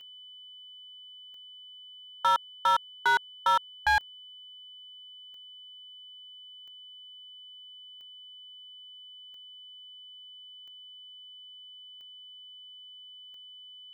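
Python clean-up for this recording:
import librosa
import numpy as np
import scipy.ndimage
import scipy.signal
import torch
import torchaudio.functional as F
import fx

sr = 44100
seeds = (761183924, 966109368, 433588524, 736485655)

y = fx.fix_declip(x, sr, threshold_db=-19.5)
y = fx.fix_declick_ar(y, sr, threshold=10.0)
y = fx.notch(y, sr, hz=3000.0, q=30.0)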